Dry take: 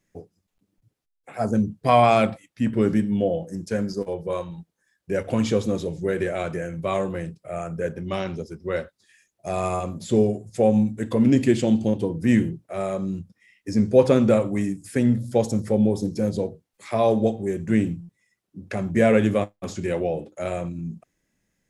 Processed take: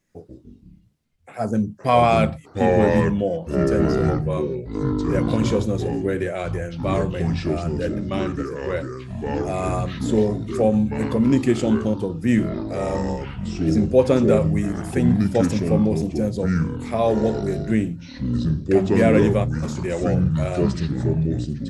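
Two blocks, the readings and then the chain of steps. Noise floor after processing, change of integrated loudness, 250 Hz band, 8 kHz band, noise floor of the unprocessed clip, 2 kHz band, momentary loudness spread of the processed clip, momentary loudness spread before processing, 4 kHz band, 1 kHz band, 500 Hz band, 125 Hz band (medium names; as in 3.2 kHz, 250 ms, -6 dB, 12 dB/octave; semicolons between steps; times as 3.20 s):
-47 dBFS, +2.0 dB, +2.5 dB, +1.0 dB, -77 dBFS, +2.0 dB, 9 LU, 13 LU, +2.0 dB, +1.0 dB, +1.5 dB, +6.0 dB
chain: ever faster or slower copies 88 ms, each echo -5 st, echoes 3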